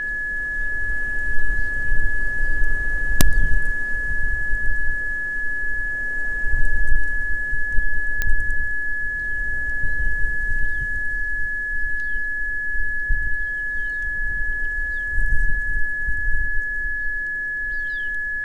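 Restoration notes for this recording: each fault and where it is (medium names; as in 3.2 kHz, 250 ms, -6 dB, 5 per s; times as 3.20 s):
whine 1.7 kHz -23 dBFS
8.22 s: pop -7 dBFS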